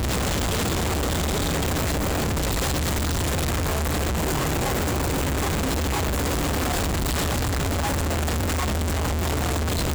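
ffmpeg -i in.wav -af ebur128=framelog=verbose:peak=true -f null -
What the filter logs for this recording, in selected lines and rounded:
Integrated loudness:
  I:         -24.2 LUFS
  Threshold: -34.2 LUFS
Loudness range:
  LRA:         0.3 LU
  Threshold: -44.2 LUFS
  LRA low:   -24.4 LUFS
  LRA high:  -24.0 LUFS
True peak:
  Peak:      -16.3 dBFS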